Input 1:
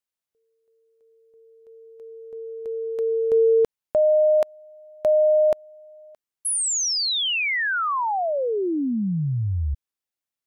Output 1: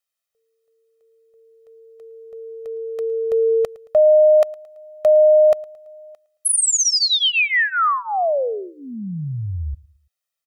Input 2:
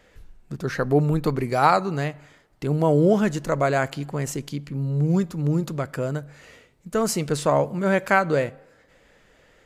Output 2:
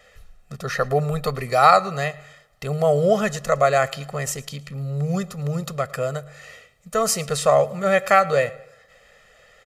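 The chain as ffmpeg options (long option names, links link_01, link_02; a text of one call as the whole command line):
ffmpeg -i in.wav -filter_complex "[0:a]lowshelf=frequency=450:gain=-9.5,aecho=1:1:1.6:0.94,asplit=2[link_01][link_02];[link_02]aecho=0:1:111|222|333:0.075|0.033|0.0145[link_03];[link_01][link_03]amix=inputs=2:normalize=0,volume=3dB" out.wav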